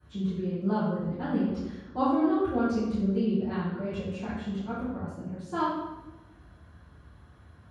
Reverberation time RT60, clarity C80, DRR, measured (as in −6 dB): 1.1 s, 2.5 dB, −17.0 dB